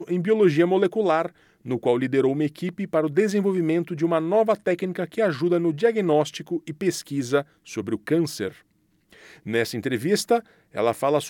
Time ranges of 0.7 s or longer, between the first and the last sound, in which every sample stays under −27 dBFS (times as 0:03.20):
0:08.48–0:09.47